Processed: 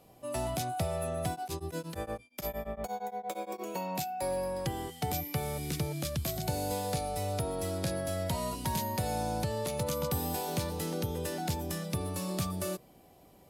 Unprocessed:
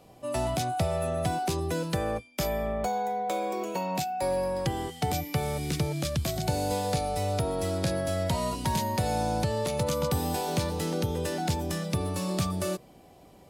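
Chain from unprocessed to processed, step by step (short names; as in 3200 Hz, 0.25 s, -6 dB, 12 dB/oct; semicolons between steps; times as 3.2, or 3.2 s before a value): bell 13000 Hz +8.5 dB 0.64 oct; 1.31–3.63 beating tremolo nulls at 8.6 Hz; gain -5 dB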